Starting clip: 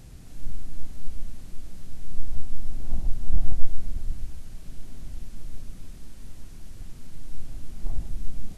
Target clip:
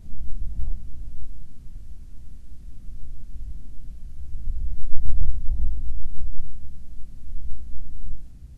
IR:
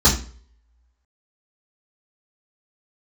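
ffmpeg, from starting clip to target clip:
-filter_complex "[0:a]areverse,lowshelf=frequency=230:gain=12,asplit=2[link_01][link_02];[1:a]atrim=start_sample=2205,asetrate=40131,aresample=44100[link_03];[link_02][link_03]afir=irnorm=-1:irlink=0,volume=-37dB[link_04];[link_01][link_04]amix=inputs=2:normalize=0,volume=-10.5dB"

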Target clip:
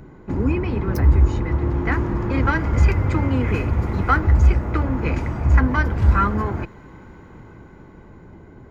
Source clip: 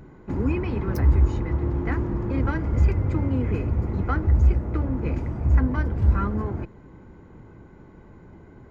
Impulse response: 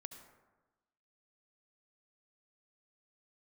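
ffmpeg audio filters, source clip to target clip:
-filter_complex "[0:a]acrossover=split=850[link_01][link_02];[link_02]dynaudnorm=framelen=290:gausssize=13:maxgain=9dB[link_03];[link_01][link_03]amix=inputs=2:normalize=0,asettb=1/sr,asplit=3[link_04][link_05][link_06];[link_04]atrim=end=3.484[link_07];[link_05]atrim=start=3.48:end=4.19,asetpts=PTS-STARTPTS,afade=type=in:duration=0.004:curve=qsin,afade=type=out:start_time=0.706:duration=0.004:curve=qsin,aeval=exprs='sgn(val(0))*max(abs(val(0))-0.00237,0)':channel_layout=same[link_08];[link_06]atrim=start=4.186[link_09];[link_07][link_08]acrossfade=duration=0.004:curve1=hsin:curve2=qsin[link_10];[link_10][link_09]acrossfade=duration=0.004:curve1=qsin:curve2=hsin,volume=3.5dB"

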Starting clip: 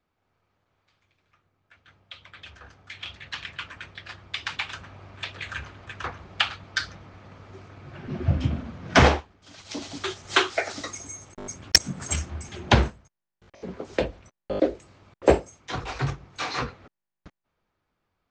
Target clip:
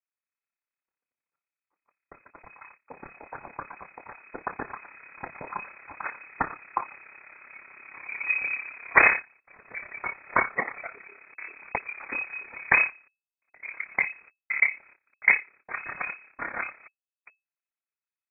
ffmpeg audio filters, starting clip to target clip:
ffmpeg -i in.wav -filter_complex "[0:a]asettb=1/sr,asplit=3[link_01][link_02][link_03];[link_01]atrim=end=15.254[link_04];[link_02]atrim=start=15.25:end=16.66,asetpts=PTS-STARTPTS,afade=type=in:duration=0.004:curve=qsin,afade=type=out:start_time=1.406:duration=0.004:curve=qsin,aeval=exprs='0.631*(cos(1*acos(clip(val(0)/0.631,-1,1)))-cos(1*PI/2))+0.0398*(cos(3*acos(clip(val(0)/0.631,-1,1)))-cos(3*PI/2))':channel_layout=same[link_05];[link_03]atrim=start=16.656[link_06];[link_04][link_05]acrossfade=duration=0.004:curve1=hsin:curve2=qsin[link_07];[link_07][link_06]acrossfade=duration=0.004:curve1=qsin:curve2=hsin,tremolo=f=34:d=0.75,agate=range=-23dB:threshold=-53dB:ratio=16:detection=peak,equalizer=frequency=130:width=1.5:gain=-11.5,lowpass=frequency=2200:width_type=q:width=0.5098,lowpass=frequency=2200:width_type=q:width=0.6013,lowpass=frequency=2200:width_type=q:width=0.9,lowpass=frequency=2200:width_type=q:width=2.563,afreqshift=-2600,volume=3.5dB" out.wav

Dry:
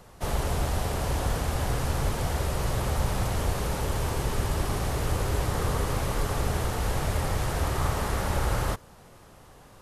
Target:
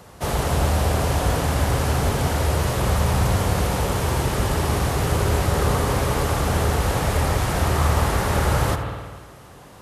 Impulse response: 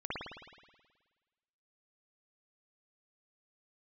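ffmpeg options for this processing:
-filter_complex "[0:a]highpass=59,asplit=2[link_01][link_02];[1:a]atrim=start_sample=2205,adelay=78[link_03];[link_02][link_03]afir=irnorm=-1:irlink=0,volume=-9.5dB[link_04];[link_01][link_04]amix=inputs=2:normalize=0,volume=6.5dB"

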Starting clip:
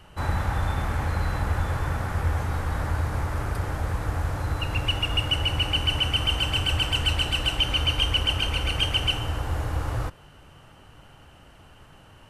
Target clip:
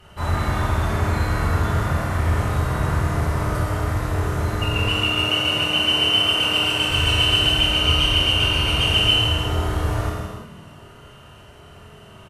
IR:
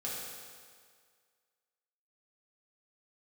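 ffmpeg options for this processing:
-filter_complex "[0:a]asettb=1/sr,asplit=3[link_01][link_02][link_03];[link_01]atrim=end=4.924[link_04];[link_02]atrim=start=4.92:end=6.89,asetpts=PTS-STARTPTS,afade=type=in:duration=0.004:curve=qsin,afade=type=out:start_time=1.966:duration=0.004:curve=qsin,highpass=170[link_05];[link_03]atrim=start=6.886[link_06];[link_04][link_05]acrossfade=duration=0.004:curve1=hsin:curve2=qsin[link_07];[link_07][link_06]acrossfade=duration=0.004:curve1=qsin:curve2=hsin,asplit=3[link_08][link_09][link_10];[link_09]adelay=414,afreqshift=110,volume=-23.5dB[link_11];[link_10]adelay=828,afreqshift=220,volume=-33.7dB[link_12];[link_08][link_11][link_12]amix=inputs=3:normalize=0[link_13];[1:a]atrim=start_sample=2205,afade=type=out:start_time=0.36:duration=0.01,atrim=end_sample=16317,asetrate=36603,aresample=44100[link_14];[link_13][link_14]afir=irnorm=-1:irlink=0,volume=3dB"

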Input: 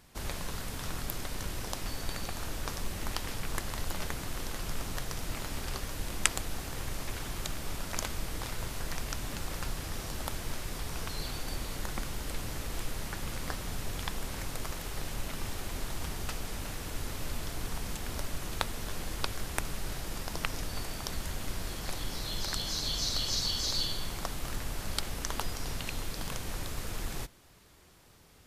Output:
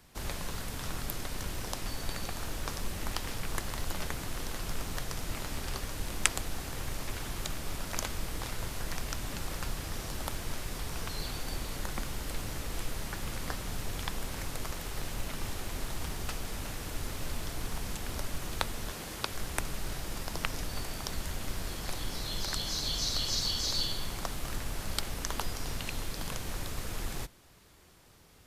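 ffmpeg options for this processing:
ffmpeg -i in.wav -filter_complex "[0:a]asettb=1/sr,asplit=3[link_01][link_02][link_03];[link_01]atrim=end=18.914[link_04];[link_02]atrim=start=18.91:end=19.33,asetpts=PTS-STARTPTS,afade=type=in:duration=0.004:curve=qsin,afade=type=out:start_time=0.416:duration=0.004:curve=qsin,highpass=frequency=130:poles=1[link_05];[link_03]atrim=start=19.326[link_06];[link_04][link_05]acrossfade=duration=0.004:curve1=hsin:curve2=qsin[link_07];[link_07][link_06]acrossfade=duration=0.004:curve1=qsin:curve2=hsin,acrossover=split=250|1500|6500[link_08][link_09][link_10][link_11];[link_08]acrusher=bits=6:mode=log:mix=0:aa=0.000001[link_12];[link_12][link_09][link_10][link_11]amix=inputs=4:normalize=0" out.wav

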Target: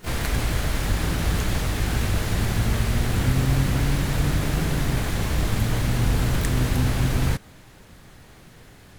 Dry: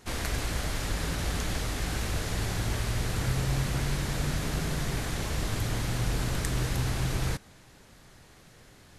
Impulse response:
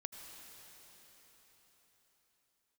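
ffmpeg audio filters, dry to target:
-filter_complex "[0:a]asplit=2[link_01][link_02];[link_02]asetrate=88200,aresample=44100,atempo=0.5,volume=-8dB[link_03];[link_01][link_03]amix=inputs=2:normalize=0,bass=frequency=250:gain=3,treble=frequency=4000:gain=-10,crystalizer=i=1.5:c=0,volume=4.5dB"

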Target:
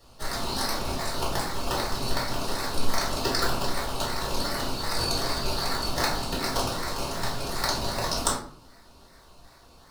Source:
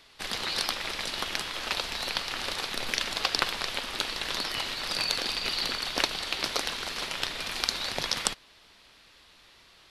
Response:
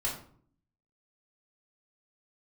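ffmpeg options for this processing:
-filter_complex "[0:a]equalizer=frequency=3300:width_type=o:width=0.3:gain=-8,acrossover=split=460|3800[link_01][link_02][link_03];[link_02]acrusher=samples=18:mix=1:aa=0.000001:lfo=1:lforange=10.8:lforate=2.6[link_04];[link_01][link_04][link_03]amix=inputs=3:normalize=0[link_05];[1:a]atrim=start_sample=2205[link_06];[link_05][link_06]afir=irnorm=-1:irlink=0"

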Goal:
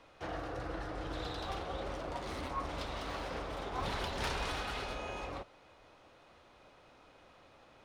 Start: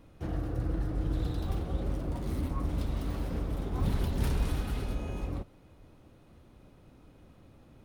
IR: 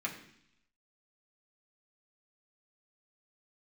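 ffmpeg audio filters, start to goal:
-filter_complex "[0:a]acrossover=split=520 7100:gain=0.1 1 0.1[link_01][link_02][link_03];[link_01][link_02][link_03]amix=inputs=3:normalize=0,volume=6.5dB"

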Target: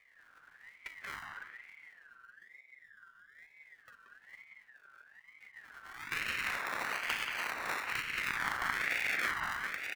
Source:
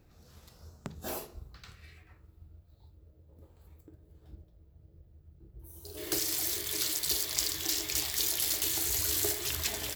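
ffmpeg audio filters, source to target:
ffmpeg -i in.wav -filter_complex "[0:a]afftfilt=real='re*(1-between(b*sr/4096,500,5200))':imag='im*(1-between(b*sr/4096,500,5200))':win_size=4096:overlap=0.75,acrusher=samples=35:mix=1:aa=0.000001:lfo=1:lforange=21:lforate=0.24,asplit=2[link_01][link_02];[link_02]adelay=180,lowpass=frequency=1800:poles=1,volume=-4dB,asplit=2[link_03][link_04];[link_04]adelay=180,lowpass=frequency=1800:poles=1,volume=0.45,asplit=2[link_05][link_06];[link_06]adelay=180,lowpass=frequency=1800:poles=1,volume=0.45,asplit=2[link_07][link_08];[link_08]adelay=180,lowpass=frequency=1800:poles=1,volume=0.45,asplit=2[link_09][link_10];[link_10]adelay=180,lowpass=frequency=1800:poles=1,volume=0.45,asplit=2[link_11][link_12];[link_12]adelay=180,lowpass=frequency=1800:poles=1,volume=0.45[link_13];[link_03][link_05][link_07][link_09][link_11][link_13]amix=inputs=6:normalize=0[link_14];[link_01][link_14]amix=inputs=2:normalize=0,aeval=exprs='val(0)*sin(2*PI*1800*n/s+1800*0.2/1.1*sin(2*PI*1.1*n/s))':channel_layout=same,volume=-1.5dB" out.wav

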